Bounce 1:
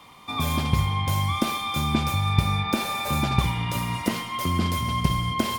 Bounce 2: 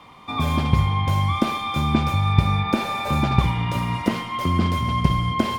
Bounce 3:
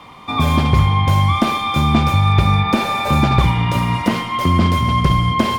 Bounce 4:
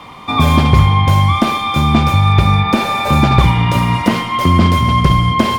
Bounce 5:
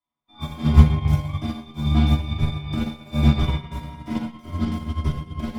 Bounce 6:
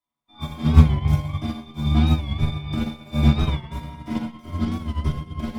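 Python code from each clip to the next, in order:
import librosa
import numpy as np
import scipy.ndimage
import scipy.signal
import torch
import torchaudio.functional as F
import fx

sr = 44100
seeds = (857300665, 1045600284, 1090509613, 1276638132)

y1 = fx.lowpass(x, sr, hz=2300.0, slope=6)
y1 = y1 * librosa.db_to_amplitude(4.0)
y2 = np.clip(y1, -10.0 ** (-12.5 / 20.0), 10.0 ** (-12.5 / 20.0))
y2 = y2 * librosa.db_to_amplitude(6.5)
y3 = fx.rider(y2, sr, range_db=4, speed_s=2.0)
y3 = y3 * librosa.db_to_amplitude(3.0)
y4 = fx.stiff_resonator(y3, sr, f0_hz=73.0, decay_s=0.28, stiffness=0.008)
y4 = fx.room_shoebox(y4, sr, seeds[0], volume_m3=1100.0, walls='mixed', distance_m=2.9)
y4 = fx.upward_expand(y4, sr, threshold_db=-35.0, expansion=2.5)
y4 = y4 * librosa.db_to_amplitude(-2.0)
y5 = fx.record_warp(y4, sr, rpm=45.0, depth_cents=100.0)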